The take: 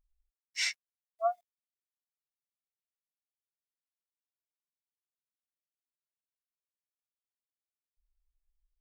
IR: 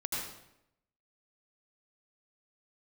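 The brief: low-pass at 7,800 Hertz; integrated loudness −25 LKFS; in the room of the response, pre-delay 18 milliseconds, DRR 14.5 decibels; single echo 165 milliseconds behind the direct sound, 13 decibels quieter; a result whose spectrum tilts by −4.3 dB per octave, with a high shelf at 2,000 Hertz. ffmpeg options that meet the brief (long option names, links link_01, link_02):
-filter_complex "[0:a]lowpass=7800,highshelf=frequency=2000:gain=4,aecho=1:1:165:0.224,asplit=2[link_01][link_02];[1:a]atrim=start_sample=2205,adelay=18[link_03];[link_02][link_03]afir=irnorm=-1:irlink=0,volume=-18.5dB[link_04];[link_01][link_04]amix=inputs=2:normalize=0,volume=8dB"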